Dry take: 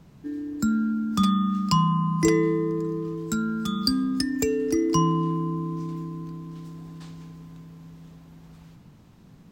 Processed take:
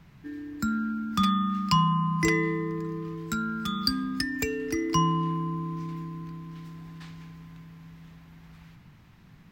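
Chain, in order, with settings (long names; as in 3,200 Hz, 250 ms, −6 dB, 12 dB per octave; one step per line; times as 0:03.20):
octave-band graphic EQ 250/500/2,000/8,000 Hz −5/−7/+7/−6 dB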